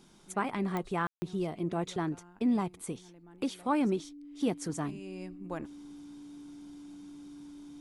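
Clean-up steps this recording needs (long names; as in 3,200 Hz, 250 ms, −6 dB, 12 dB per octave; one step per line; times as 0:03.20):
click removal
notch filter 290 Hz, Q 30
ambience match 0:01.07–0:01.22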